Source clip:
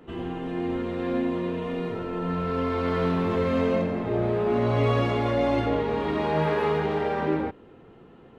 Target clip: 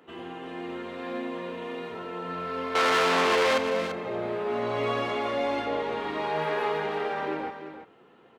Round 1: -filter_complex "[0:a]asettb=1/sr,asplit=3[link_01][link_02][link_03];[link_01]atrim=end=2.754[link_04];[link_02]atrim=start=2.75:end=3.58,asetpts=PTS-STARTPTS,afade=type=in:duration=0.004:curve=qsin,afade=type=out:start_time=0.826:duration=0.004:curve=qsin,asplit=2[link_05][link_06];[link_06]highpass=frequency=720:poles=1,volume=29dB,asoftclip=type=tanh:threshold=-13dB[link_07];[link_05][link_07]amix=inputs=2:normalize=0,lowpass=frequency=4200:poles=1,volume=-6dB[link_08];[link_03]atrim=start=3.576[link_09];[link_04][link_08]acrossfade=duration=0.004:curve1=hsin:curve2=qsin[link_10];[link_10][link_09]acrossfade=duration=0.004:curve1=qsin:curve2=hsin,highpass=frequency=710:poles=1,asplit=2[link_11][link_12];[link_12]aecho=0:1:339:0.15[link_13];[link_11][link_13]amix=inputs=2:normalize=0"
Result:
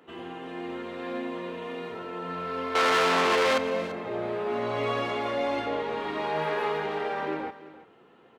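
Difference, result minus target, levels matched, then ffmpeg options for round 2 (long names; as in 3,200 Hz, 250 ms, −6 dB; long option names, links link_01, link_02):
echo-to-direct −6.5 dB
-filter_complex "[0:a]asettb=1/sr,asplit=3[link_01][link_02][link_03];[link_01]atrim=end=2.754[link_04];[link_02]atrim=start=2.75:end=3.58,asetpts=PTS-STARTPTS,afade=type=in:duration=0.004:curve=qsin,afade=type=out:start_time=0.826:duration=0.004:curve=qsin,asplit=2[link_05][link_06];[link_06]highpass=frequency=720:poles=1,volume=29dB,asoftclip=type=tanh:threshold=-13dB[link_07];[link_05][link_07]amix=inputs=2:normalize=0,lowpass=frequency=4200:poles=1,volume=-6dB[link_08];[link_03]atrim=start=3.576[link_09];[link_04][link_08]acrossfade=duration=0.004:curve1=hsin:curve2=qsin[link_10];[link_10][link_09]acrossfade=duration=0.004:curve1=qsin:curve2=hsin,highpass=frequency=710:poles=1,asplit=2[link_11][link_12];[link_12]aecho=0:1:339:0.316[link_13];[link_11][link_13]amix=inputs=2:normalize=0"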